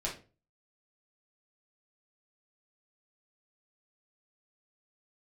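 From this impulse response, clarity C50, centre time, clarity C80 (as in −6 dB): 8.5 dB, 24 ms, 15.0 dB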